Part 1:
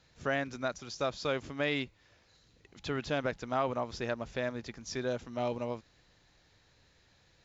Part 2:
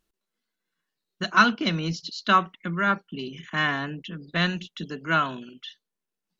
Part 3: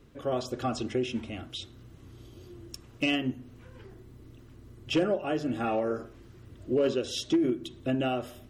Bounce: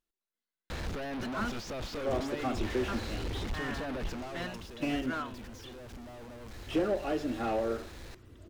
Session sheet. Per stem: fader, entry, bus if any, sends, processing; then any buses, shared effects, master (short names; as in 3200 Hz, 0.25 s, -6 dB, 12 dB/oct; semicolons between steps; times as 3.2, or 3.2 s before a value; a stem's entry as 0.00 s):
4.01 s -1 dB -> 4.73 s -11.5 dB, 0.70 s, no send, infinite clipping; tilt -2 dB/oct
-12.0 dB, 0.00 s, muted 1.57–2.88, no send, dry
-1.5 dB, 1.80 s, no send, dry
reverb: off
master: bell 140 Hz -9 dB 0.82 oct; slew limiter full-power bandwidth 30 Hz